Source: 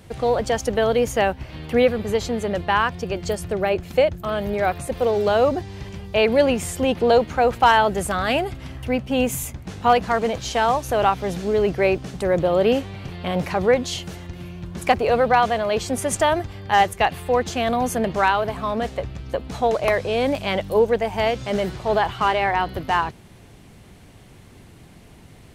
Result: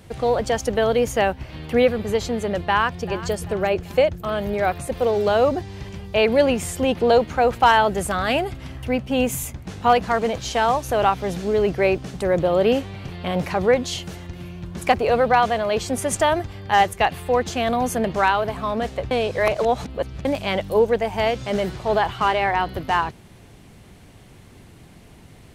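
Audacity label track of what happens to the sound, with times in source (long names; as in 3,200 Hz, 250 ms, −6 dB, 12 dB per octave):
2.610000	3.280000	delay throw 390 ms, feedback 45%, level −16 dB
19.110000	20.250000	reverse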